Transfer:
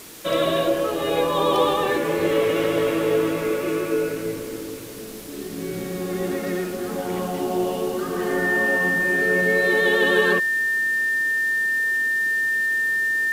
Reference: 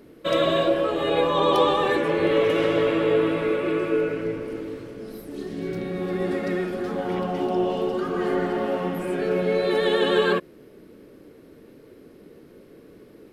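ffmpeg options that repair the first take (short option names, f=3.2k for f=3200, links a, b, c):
-af "adeclick=t=4,bandreject=f=1.8k:w=30,afftdn=nr=18:nf=-31"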